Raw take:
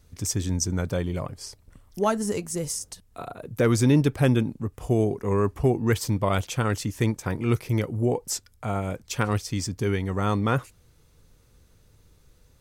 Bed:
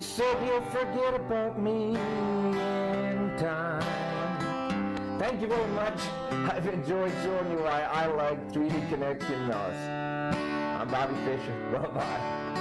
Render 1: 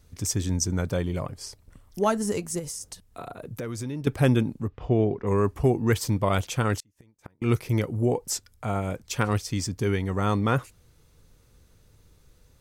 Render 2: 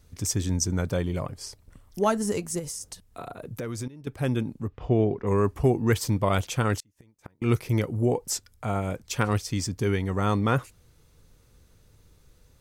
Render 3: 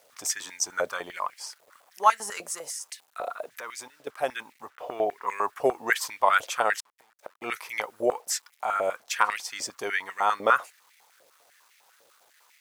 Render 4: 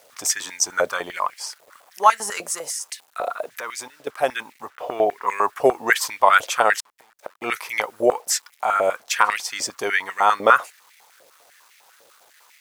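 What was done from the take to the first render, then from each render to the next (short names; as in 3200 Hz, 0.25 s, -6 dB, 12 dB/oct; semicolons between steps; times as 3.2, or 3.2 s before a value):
2.59–4.07 compressor 4:1, threshold -32 dBFS; 4.68–5.27 LPF 3900 Hz 24 dB/oct; 6.78–7.42 flipped gate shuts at -22 dBFS, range -36 dB
3.88–4.87 fade in, from -15.5 dB
requantised 10-bit, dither none; stepped high-pass 10 Hz 570–2100 Hz
gain +7 dB; limiter -1 dBFS, peak gain reduction 3 dB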